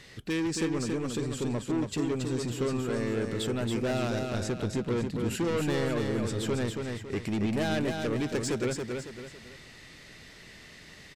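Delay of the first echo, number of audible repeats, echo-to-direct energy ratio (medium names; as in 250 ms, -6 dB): 277 ms, 3, -4.0 dB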